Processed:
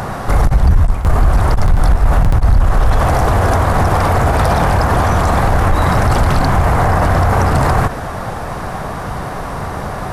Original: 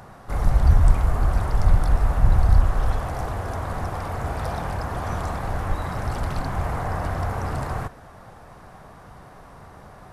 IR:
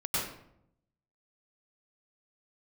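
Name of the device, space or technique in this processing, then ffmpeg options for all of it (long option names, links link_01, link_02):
loud club master: -af "acompressor=threshold=-21dB:ratio=2,asoftclip=type=hard:threshold=-17dB,alimiter=level_in=25.5dB:limit=-1dB:release=50:level=0:latency=1,volume=-3.5dB"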